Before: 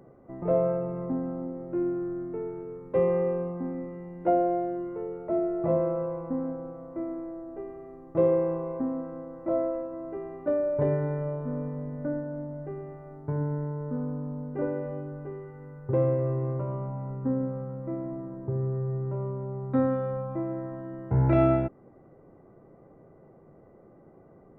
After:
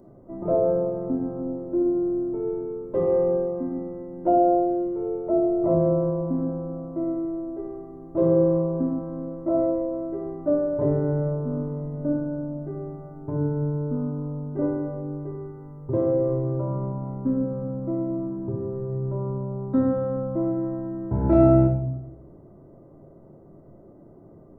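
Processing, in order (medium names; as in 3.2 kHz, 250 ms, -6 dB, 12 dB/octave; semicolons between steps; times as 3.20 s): peaking EQ 2.2 kHz -14.5 dB 1.4 oct; reverberation RT60 0.80 s, pre-delay 3 ms, DRR 1 dB; trim +2 dB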